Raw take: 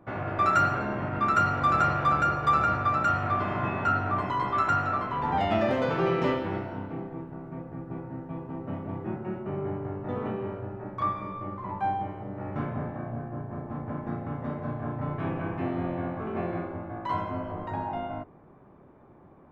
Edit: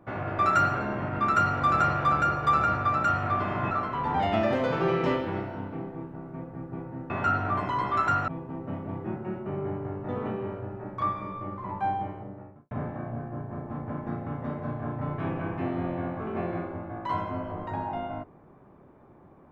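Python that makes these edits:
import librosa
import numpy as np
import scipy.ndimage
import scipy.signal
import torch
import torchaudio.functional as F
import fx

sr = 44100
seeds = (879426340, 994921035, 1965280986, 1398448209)

y = fx.studio_fade_out(x, sr, start_s=12.03, length_s=0.68)
y = fx.edit(y, sr, fx.move(start_s=3.71, length_s=1.18, to_s=8.28), tone=tone)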